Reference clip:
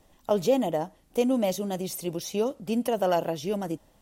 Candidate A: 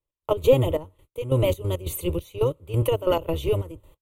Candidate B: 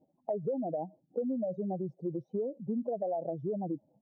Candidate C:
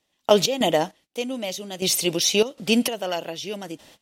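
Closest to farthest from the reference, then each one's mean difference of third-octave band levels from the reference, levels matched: C, A, B; 6.0 dB, 8.5 dB, 13.5 dB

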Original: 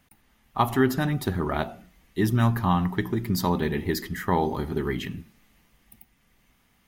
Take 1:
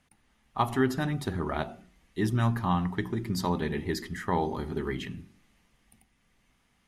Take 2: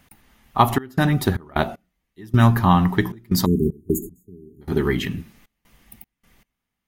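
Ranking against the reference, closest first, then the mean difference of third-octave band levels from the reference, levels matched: 1, 2; 1.5 dB, 9.0 dB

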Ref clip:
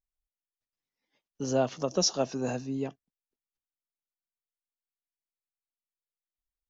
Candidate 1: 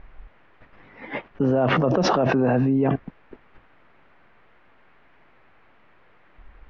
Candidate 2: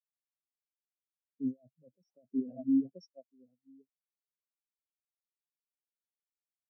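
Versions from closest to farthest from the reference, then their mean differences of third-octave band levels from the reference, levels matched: 1, 2; 7.5 dB, 19.0 dB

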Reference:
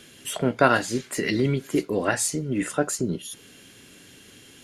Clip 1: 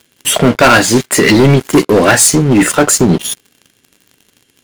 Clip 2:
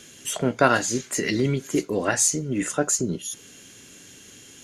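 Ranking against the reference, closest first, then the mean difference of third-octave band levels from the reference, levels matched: 2, 1; 1.0 dB, 9.0 dB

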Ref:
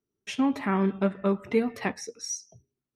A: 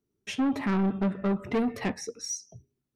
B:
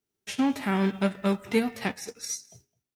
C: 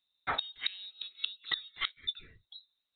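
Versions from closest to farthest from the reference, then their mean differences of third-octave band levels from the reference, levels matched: A, B, C; 2.5 dB, 5.5 dB, 15.5 dB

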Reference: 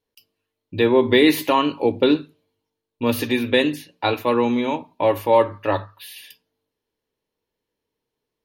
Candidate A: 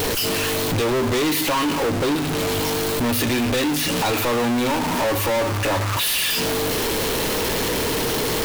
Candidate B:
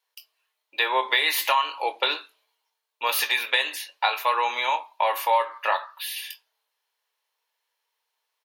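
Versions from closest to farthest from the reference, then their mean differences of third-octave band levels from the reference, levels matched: B, A; 11.5 dB, 15.5 dB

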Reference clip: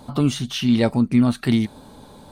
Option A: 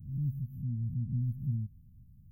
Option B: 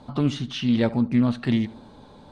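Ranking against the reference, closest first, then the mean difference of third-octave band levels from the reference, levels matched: B, A; 2.5 dB, 14.0 dB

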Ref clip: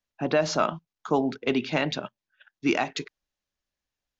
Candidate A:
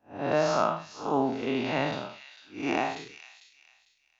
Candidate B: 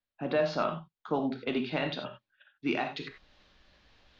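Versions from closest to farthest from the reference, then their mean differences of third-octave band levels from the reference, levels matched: B, A; 4.0 dB, 6.0 dB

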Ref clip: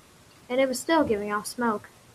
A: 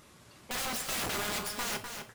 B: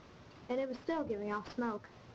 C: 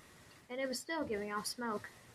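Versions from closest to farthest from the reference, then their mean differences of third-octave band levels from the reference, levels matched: C, B, A; 5.5 dB, 7.5 dB, 14.0 dB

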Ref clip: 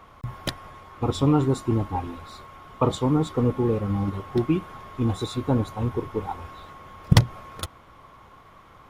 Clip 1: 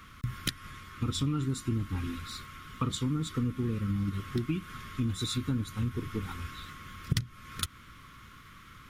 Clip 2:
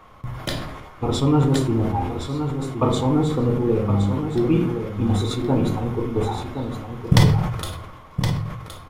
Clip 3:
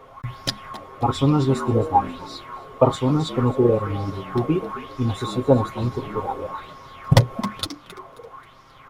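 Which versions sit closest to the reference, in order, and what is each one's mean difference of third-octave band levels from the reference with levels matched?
3, 2, 1; 3.0 dB, 5.5 dB, 8.5 dB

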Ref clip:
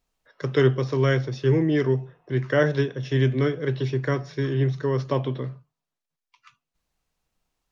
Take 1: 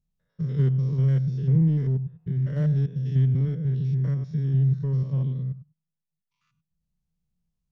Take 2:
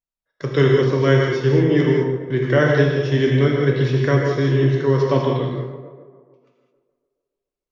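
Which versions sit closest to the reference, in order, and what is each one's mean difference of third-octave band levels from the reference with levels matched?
2, 1; 5.0 dB, 9.5 dB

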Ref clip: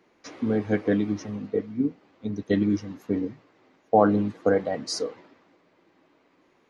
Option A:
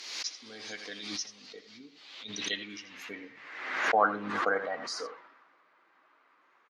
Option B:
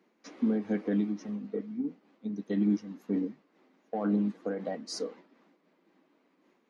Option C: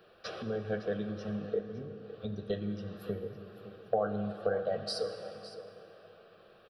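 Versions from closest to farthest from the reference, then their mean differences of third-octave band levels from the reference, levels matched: B, C, A; 3.5 dB, 6.5 dB, 10.5 dB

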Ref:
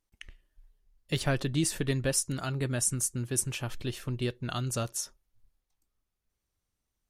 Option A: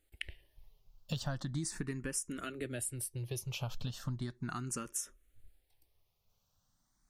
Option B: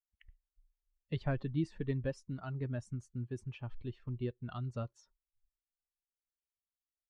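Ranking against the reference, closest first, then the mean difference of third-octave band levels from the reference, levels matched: A, B; 4.5 dB, 10.0 dB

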